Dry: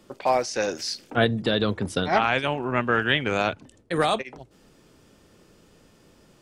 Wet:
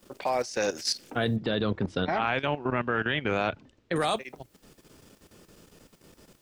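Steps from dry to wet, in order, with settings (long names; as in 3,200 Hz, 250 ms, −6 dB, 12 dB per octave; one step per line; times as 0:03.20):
high-shelf EQ 7,500 Hz +6.5 dB
output level in coarse steps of 14 dB
background noise white −71 dBFS
0:01.36–0:03.96: high-frequency loss of the air 170 metres
level +2 dB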